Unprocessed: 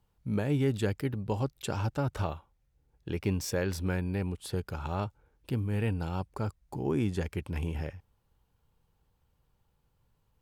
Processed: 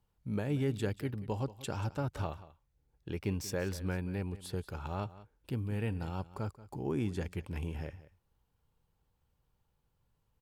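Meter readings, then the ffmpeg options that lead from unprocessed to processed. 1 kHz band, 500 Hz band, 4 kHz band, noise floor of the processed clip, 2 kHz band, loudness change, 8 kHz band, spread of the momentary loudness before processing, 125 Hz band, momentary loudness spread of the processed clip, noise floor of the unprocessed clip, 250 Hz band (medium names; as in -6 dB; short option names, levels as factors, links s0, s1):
-4.5 dB, -4.5 dB, -4.5 dB, -78 dBFS, -4.5 dB, -4.5 dB, -4.5 dB, 7 LU, -4.5 dB, 8 LU, -74 dBFS, -4.5 dB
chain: -af "aecho=1:1:183:0.141,volume=0.596"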